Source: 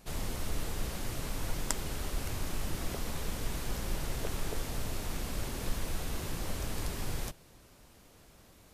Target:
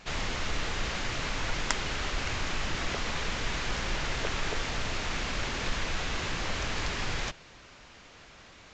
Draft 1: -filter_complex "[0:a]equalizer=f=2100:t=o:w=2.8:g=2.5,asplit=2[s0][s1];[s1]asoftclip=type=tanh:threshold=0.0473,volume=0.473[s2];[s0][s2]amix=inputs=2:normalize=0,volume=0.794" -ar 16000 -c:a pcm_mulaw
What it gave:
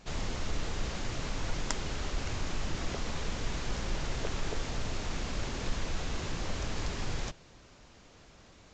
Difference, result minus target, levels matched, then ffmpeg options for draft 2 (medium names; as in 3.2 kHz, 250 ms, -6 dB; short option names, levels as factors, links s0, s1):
2 kHz band -4.5 dB
-filter_complex "[0:a]equalizer=f=2100:t=o:w=2.8:g=12,asplit=2[s0][s1];[s1]asoftclip=type=tanh:threshold=0.0473,volume=0.473[s2];[s0][s2]amix=inputs=2:normalize=0,volume=0.794" -ar 16000 -c:a pcm_mulaw